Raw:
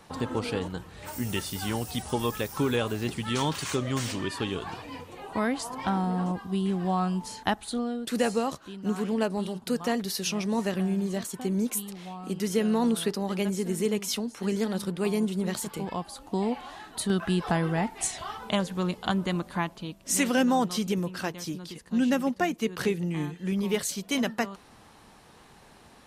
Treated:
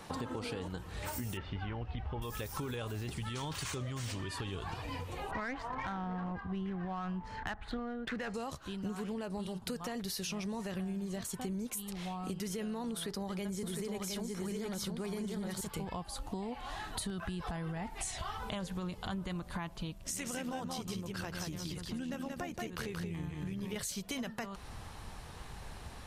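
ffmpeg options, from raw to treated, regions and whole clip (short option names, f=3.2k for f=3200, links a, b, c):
-filter_complex "[0:a]asettb=1/sr,asplit=3[a][b][c];[a]atrim=end=1.374[d];[b]atrim=start=1.37:end=2.22,asetpts=PTS-STARTPTS,afade=t=in:d=0.004:c=qsin,afade=t=out:st=0.846:d=0.004:c=qsin,lowpass=f=2.7k:w=0.5412,lowpass=f=2.7k:w=1.3066,asubboost=boost=9.5:cutoff=94[e];[c]atrim=start=2.216[f];[d][e]acrossfade=d=0.004:c1=hsin:c2=qsin[g];[g][f]acrossfade=d=0.004:c1=qsin:c2=hsin,asettb=1/sr,asplit=3[h][i][j];[h]atrim=end=5.314[k];[i]atrim=start=5.31:end=8.34,asetpts=PTS-STARTPTS,afade=t=in:d=0.004:c=qsin,afade=t=out:st=3.026:d=0.004:c=qsin,equalizer=f=1.8k:w=1.1:g=11,adynamicsmooth=sensitivity=1.5:basefreq=1.6k[l];[j]atrim=start=8.336[m];[k][l]acrossfade=d=0.004:c1=hsin:c2=qsin[n];[n][m]acrossfade=d=0.004:c1=qsin:c2=hsin,asettb=1/sr,asplit=3[o][p][q];[o]atrim=end=12.924[r];[p]atrim=start=12.92:end=15.61,asetpts=PTS-STARTPTS,afade=t=in:d=0.004:c=qsin,afade=t=out:st=2.686:d=0.004:c=qsin,bandreject=f=2.7k:w=9,aecho=1:1:709:0.668,atrim=end_sample=118629[s];[q]atrim=start=15.606[t];[r][s]acrossfade=d=0.004:c1=hsin:c2=qsin[u];[u][t]acrossfade=d=0.004:c1=qsin:c2=hsin,asettb=1/sr,asplit=3[v][w][x];[v]atrim=end=19.984[y];[w]atrim=start=19.98:end=23.76,asetpts=PTS-STARTPTS,afade=t=in:d=0.004:c=qsin,afade=t=out:st=3.776:d=0.004:c=qsin,acompressor=threshold=-34dB:ratio=2:attack=3.2:release=140:knee=1:detection=peak,tremolo=f=79:d=0.462,aecho=1:1:180:0.631,atrim=end_sample=166698[z];[x]atrim=start=23.756[aa];[y][z]acrossfade=d=0.004:c1=hsin:c2=qsin[ab];[ab][aa]acrossfade=d=0.004:c1=qsin:c2=hsin,asubboost=boost=5.5:cutoff=99,alimiter=limit=-23dB:level=0:latency=1:release=19,acompressor=threshold=-40dB:ratio=6,volume=3.5dB"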